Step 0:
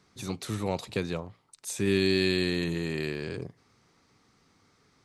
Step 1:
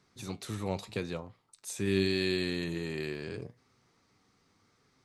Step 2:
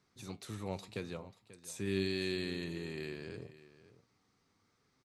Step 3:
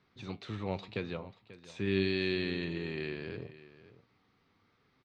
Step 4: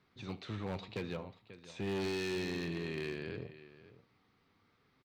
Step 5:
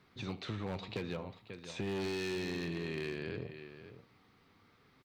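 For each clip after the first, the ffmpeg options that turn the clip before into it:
ffmpeg -i in.wav -af "flanger=delay=7.7:depth=3:regen=75:speed=0.81:shape=sinusoidal" out.wav
ffmpeg -i in.wav -af "aecho=1:1:538:0.15,volume=-6dB" out.wav
ffmpeg -i in.wav -af "lowpass=frequency=3500:width=0.5412,lowpass=frequency=3500:width=1.3066,aemphasis=mode=production:type=50fm,volume=4.5dB" out.wav
ffmpeg -i in.wav -af "asoftclip=type=hard:threshold=-31.5dB,aecho=1:1:76:0.112,volume=-1dB" out.wav
ffmpeg -i in.wav -af "acompressor=threshold=-43dB:ratio=3,volume=6dB" out.wav

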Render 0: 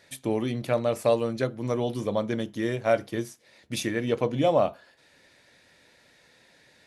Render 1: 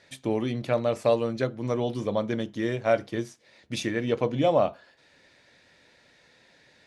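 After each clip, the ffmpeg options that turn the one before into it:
ffmpeg -i in.wav -af "lowpass=6900" out.wav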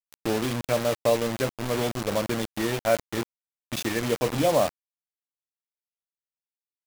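ffmpeg -i in.wav -af "acrusher=bits=4:mix=0:aa=0.000001" out.wav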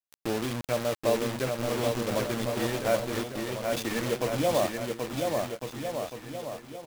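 ffmpeg -i in.wav -af "aecho=1:1:780|1404|1903|2303|2622:0.631|0.398|0.251|0.158|0.1,volume=-4dB" out.wav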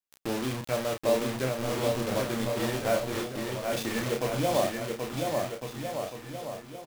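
ffmpeg -i in.wav -filter_complex "[0:a]asplit=2[link_01][link_02];[link_02]adelay=31,volume=-4.5dB[link_03];[link_01][link_03]amix=inputs=2:normalize=0,volume=-1.5dB" out.wav

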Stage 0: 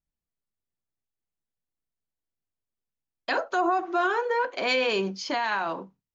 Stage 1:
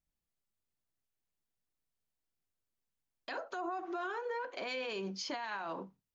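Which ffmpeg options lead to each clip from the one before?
ffmpeg -i in.wav -af "acompressor=threshold=-27dB:ratio=6,alimiter=level_in=6.5dB:limit=-24dB:level=0:latency=1:release=342,volume=-6.5dB" out.wav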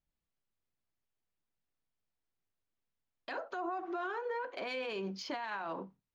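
ffmpeg -i in.wav -af "adynamicsmooth=sensitivity=3:basefreq=4600,volume=1dB" out.wav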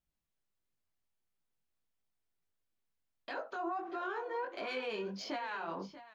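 ffmpeg -i in.wav -af "aecho=1:1:636:0.188,flanger=delay=18:depth=6:speed=1.5,volume=2.5dB" out.wav

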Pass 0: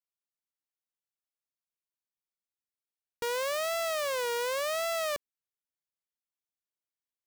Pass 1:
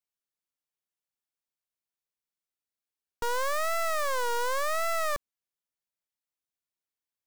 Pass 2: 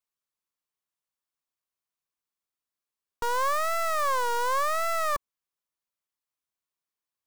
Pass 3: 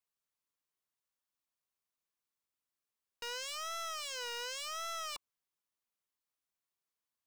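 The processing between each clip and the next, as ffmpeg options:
ffmpeg -i in.wav -af "aeval=exprs='0.0501*(cos(1*acos(clip(val(0)/0.0501,-1,1)))-cos(1*PI/2))+0.0112*(cos(5*acos(clip(val(0)/0.0501,-1,1)))-cos(5*PI/2))+0.0251*(cos(6*acos(clip(val(0)/0.0501,-1,1)))-cos(6*PI/2))+0.0178*(cos(7*acos(clip(val(0)/0.0501,-1,1)))-cos(7*PI/2))':channel_layout=same,asoftclip=type=tanh:threshold=-33.5dB,volume=8.5dB" out.wav
ffmpeg -i in.wav -af "equalizer=frequency=1100:width=3.5:gain=7" out.wav
ffmpeg -i in.wav -af "aeval=exprs='0.0188*(abs(mod(val(0)/0.0188+3,4)-2)-1)':channel_layout=same,volume=-2dB" out.wav

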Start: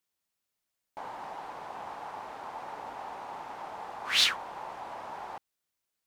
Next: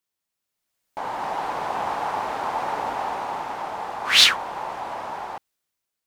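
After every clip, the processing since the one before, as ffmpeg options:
ffmpeg -i in.wav -af "dynaudnorm=framelen=280:gausssize=7:maxgain=14.5dB" out.wav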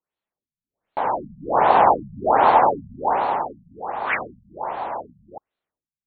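ffmpeg -i in.wav -af "dynaudnorm=framelen=230:gausssize=11:maxgain=11.5dB,equalizer=frequency=580:width_type=o:width=1.8:gain=5.5,afftfilt=real='re*lt(b*sr/1024,210*pow(4500/210,0.5+0.5*sin(2*PI*1.3*pts/sr)))':imag='im*lt(b*sr/1024,210*pow(4500/210,0.5+0.5*sin(2*PI*1.3*pts/sr)))':win_size=1024:overlap=0.75,volume=-1dB" out.wav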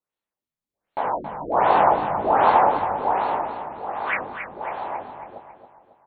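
ffmpeg -i in.wav -filter_complex "[0:a]asplit=2[link_01][link_02];[link_02]adelay=20,volume=-7dB[link_03];[link_01][link_03]amix=inputs=2:normalize=0,asplit=2[link_04][link_05];[link_05]aecho=0:1:274|548|822|1096|1370:0.376|0.169|0.0761|0.0342|0.0154[link_06];[link_04][link_06]amix=inputs=2:normalize=0,volume=-2.5dB" out.wav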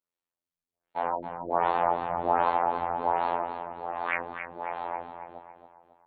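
ffmpeg -i in.wav -af "alimiter=limit=-10dB:level=0:latency=1:release=455,afftfilt=real='hypot(re,im)*cos(PI*b)':imag='0':win_size=2048:overlap=0.75,volume=-1.5dB" out.wav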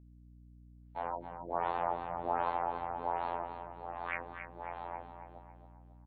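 ffmpeg -i in.wav -af "aeval=exprs='val(0)+0.00447*(sin(2*PI*60*n/s)+sin(2*PI*2*60*n/s)/2+sin(2*PI*3*60*n/s)/3+sin(2*PI*4*60*n/s)/4+sin(2*PI*5*60*n/s)/5)':channel_layout=same,aecho=1:1:249:0.0944,volume=-8.5dB" out.wav

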